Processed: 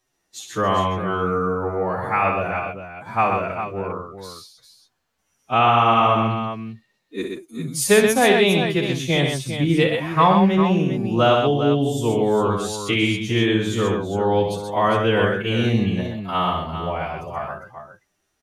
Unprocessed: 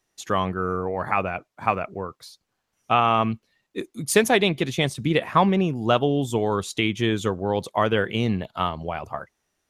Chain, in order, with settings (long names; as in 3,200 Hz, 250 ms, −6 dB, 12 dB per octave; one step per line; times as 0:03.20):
phase-vocoder stretch with locked phases 1.9×
multi-tap delay 61/127/402 ms −7.5/−5/−9 dB
level +1.5 dB